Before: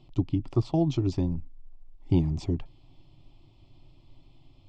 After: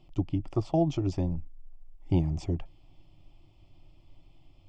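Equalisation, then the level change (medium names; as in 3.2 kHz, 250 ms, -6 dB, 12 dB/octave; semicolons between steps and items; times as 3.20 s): dynamic bell 650 Hz, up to +5 dB, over -45 dBFS, Q 1.6; graphic EQ with 31 bands 125 Hz -8 dB, 250 Hz -7 dB, 400 Hz -4 dB, 1 kHz -4 dB, 4 kHz -10 dB; 0.0 dB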